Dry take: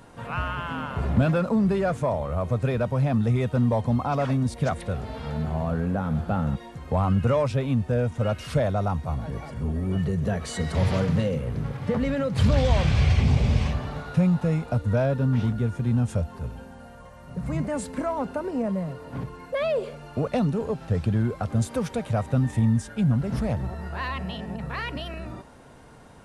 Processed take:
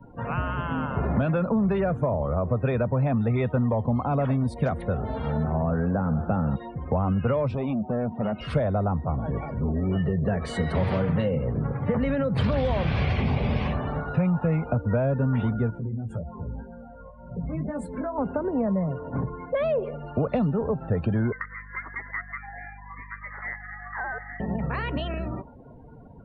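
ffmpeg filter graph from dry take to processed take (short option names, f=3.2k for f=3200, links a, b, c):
-filter_complex "[0:a]asettb=1/sr,asplit=3[a][b][c];[a]atrim=end=7.544[d];[b]atrim=start=7.54:end=8.41,asetpts=PTS-STARTPTS,afade=t=in:d=0.004:c=qsin,afade=t=out:st=0.866:d=0.004:c=qsin,highpass=200,equalizer=f=210:t=q:w=4:g=9,equalizer=f=320:t=q:w=4:g=-4,equalizer=f=500:t=q:w=4:g=-5,equalizer=f=730:t=q:w=4:g=7,equalizer=f=1.7k:t=q:w=4:g=-9,lowpass=f=4.3k:w=0.5412,lowpass=f=4.3k:w=1.3066,acompressor=threshold=-25dB:ratio=5:attack=3.2:release=140:knee=1:detection=peak,asoftclip=type=hard:threshold=-27.5dB[e];[c]atrim=start=8.406[f];[d][e]acrossfade=d=0.004:c1=hsin:c2=qsin[g];[g][f]acrossfade=d=0.004:c1=qsin:c2=hsin,asettb=1/sr,asplit=3[h][i][j];[h]atrim=end=15.704[k];[i]atrim=start=15.7:end=18.18,asetpts=PTS-STARTPTS,afade=t=in:d=0.004:c=qsin,afade=t=out:st=2.476:d=0.004:c=qsin,acompressor=threshold=-28dB:ratio=12:attack=3.2:release=140:knee=1:detection=peak,flanger=delay=17:depth=2.2:speed=1.9[l];[j]atrim=start=18.176[m];[k][l]acrossfade=d=0.004:c1=hsin:c2=qsin[n];[n][m]acrossfade=d=0.004:c1=qsin:c2=hsin,asettb=1/sr,asplit=3[o][p][q];[o]atrim=end=21.324[r];[p]atrim=start=21.32:end=24.4,asetpts=PTS-STARTPTS,afade=t=in:d=0.004:c=qsin,afade=t=out:st=3.076:d=0.004:c=qsin,highpass=f=620:w=0.5412,highpass=f=620:w=1.3066,lowpass=f=2.2k:t=q:w=0.5098,lowpass=f=2.2k:t=q:w=0.6013,lowpass=f=2.2k:t=q:w=0.9,lowpass=f=2.2k:t=q:w=2.563,afreqshift=-2600,aeval=exprs='val(0)+0.00355*(sin(2*PI*50*n/s)+sin(2*PI*2*50*n/s)/2+sin(2*PI*3*50*n/s)/3+sin(2*PI*4*50*n/s)/4+sin(2*PI*5*50*n/s)/5)':c=same[s];[q]atrim=start=24.396[t];[r][s]acrossfade=d=0.004:c1=hsin:c2=qsin[u];[u][t]acrossfade=d=0.004:c1=qsin:c2=hsin,afftdn=nr=27:nf=-44,equalizer=f=6.8k:w=0.85:g=-15,acrossover=split=160|560[v][w][x];[v]acompressor=threshold=-34dB:ratio=4[y];[w]acompressor=threshold=-32dB:ratio=4[z];[x]acompressor=threshold=-36dB:ratio=4[aa];[y][z][aa]amix=inputs=3:normalize=0,volume=5.5dB"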